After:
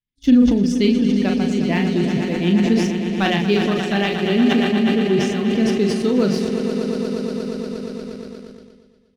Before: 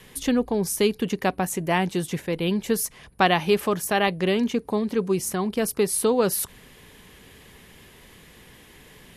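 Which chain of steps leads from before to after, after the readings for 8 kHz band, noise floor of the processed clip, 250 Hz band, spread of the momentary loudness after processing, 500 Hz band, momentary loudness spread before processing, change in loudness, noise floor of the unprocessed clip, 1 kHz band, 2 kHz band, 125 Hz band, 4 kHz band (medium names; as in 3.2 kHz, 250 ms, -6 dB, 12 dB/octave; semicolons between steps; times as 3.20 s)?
-8.0 dB, -55 dBFS, +10.5 dB, 11 LU, +3.5 dB, 6 LU, +5.5 dB, -51 dBFS, -1.5 dB, +3.5 dB, +8.0 dB, +5.0 dB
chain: expander on every frequency bin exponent 1.5; low-pass 5.1 kHz 24 dB/octave; hum notches 60/120/180 Hz; doubling 40 ms -5.5 dB; echo with a slow build-up 118 ms, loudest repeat 5, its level -12 dB; expander -36 dBFS; waveshaping leveller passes 1; in parallel at -1 dB: compression, threshold -35 dBFS, peak gain reduction 20.5 dB; on the sum: graphic EQ 250/500/1000 Hz +7/-5/-10 dB; decay stretcher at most 40 dB/s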